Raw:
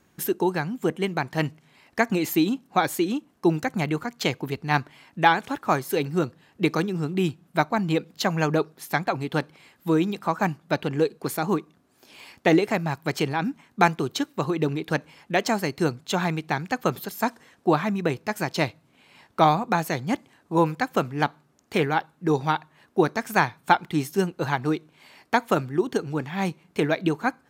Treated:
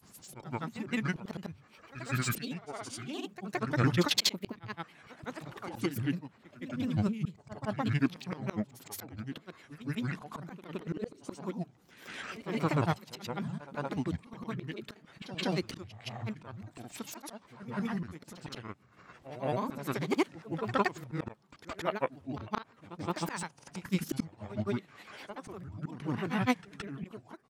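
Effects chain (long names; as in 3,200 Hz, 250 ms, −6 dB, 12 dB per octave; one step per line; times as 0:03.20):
formants moved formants −5 semitones
volume swells 737 ms
dynamic equaliser 3,100 Hz, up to +3 dB, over −55 dBFS, Q 0.7
granular cloud, pitch spread up and down by 7 semitones
echo ahead of the sound 169 ms −13 dB
level +4.5 dB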